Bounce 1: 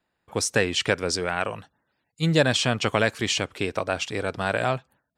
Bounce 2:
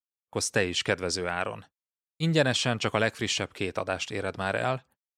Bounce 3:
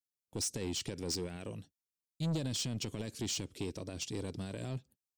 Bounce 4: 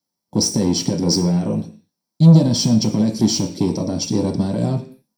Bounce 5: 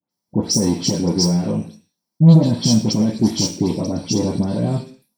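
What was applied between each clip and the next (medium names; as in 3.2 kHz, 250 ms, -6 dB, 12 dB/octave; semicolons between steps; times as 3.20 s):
gate -46 dBFS, range -42 dB; trim -3.5 dB
peak limiter -18.5 dBFS, peak gain reduction 9.5 dB; FFT filter 330 Hz 0 dB, 870 Hz -20 dB, 1.4 kHz -21 dB, 5.2 kHz 0 dB; saturation -30 dBFS, distortion -10 dB
reverberation RT60 0.40 s, pre-delay 3 ms, DRR 1.5 dB; trim +5.5 dB
phase dispersion highs, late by 106 ms, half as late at 2.1 kHz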